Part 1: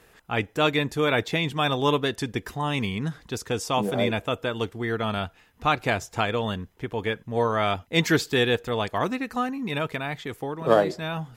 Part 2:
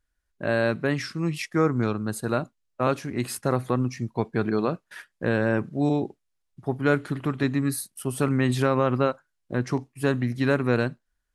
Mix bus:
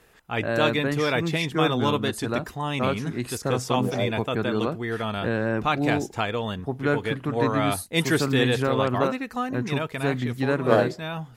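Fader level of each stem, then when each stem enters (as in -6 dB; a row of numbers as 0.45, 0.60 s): -1.5, -2.0 dB; 0.00, 0.00 s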